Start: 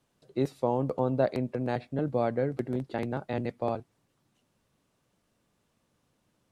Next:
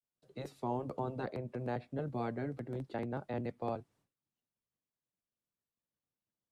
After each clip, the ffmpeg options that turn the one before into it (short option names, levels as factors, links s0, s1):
-filter_complex "[0:a]agate=range=0.0224:threshold=0.001:ratio=3:detection=peak,afftfilt=real='re*lt(hypot(re,im),0.282)':imag='im*lt(hypot(re,im),0.282)':win_size=1024:overlap=0.75,acrossover=split=110|470|1900[s0][s1][s2][s3];[s3]alimiter=level_in=5.31:limit=0.0631:level=0:latency=1:release=219,volume=0.188[s4];[s0][s1][s2][s4]amix=inputs=4:normalize=0,volume=0.501"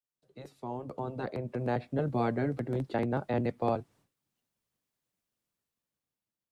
-af "dynaudnorm=f=380:g=7:m=3.98,volume=0.631"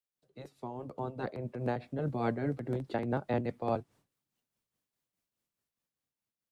-af "tremolo=f=4.8:d=0.51"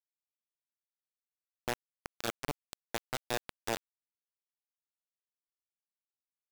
-af "lowpass=f=3500:t=q:w=11,aecho=1:1:41|57:0.251|0.168,acrusher=bits=3:mix=0:aa=0.000001,volume=0.596"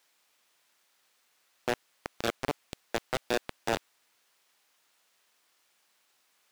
-filter_complex "[0:a]asplit=2[s0][s1];[s1]highpass=f=720:p=1,volume=50.1,asoftclip=type=tanh:threshold=0.0891[s2];[s0][s2]amix=inputs=2:normalize=0,lowpass=f=4100:p=1,volume=0.501,volume=1.5"